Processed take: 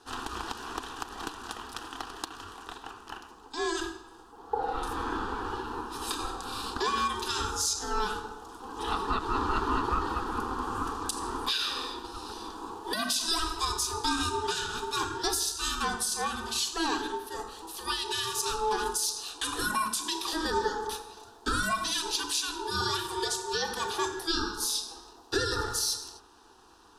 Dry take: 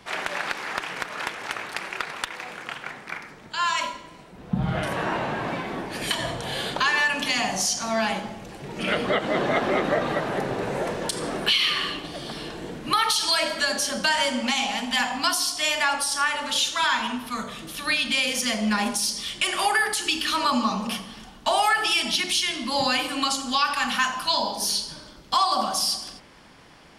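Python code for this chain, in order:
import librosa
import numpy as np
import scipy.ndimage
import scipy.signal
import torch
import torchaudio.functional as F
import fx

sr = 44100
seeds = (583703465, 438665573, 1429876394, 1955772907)

y = x * np.sin(2.0 * np.pi * 650.0 * np.arange(len(x)) / sr)
y = fx.fixed_phaser(y, sr, hz=580.0, stages=6)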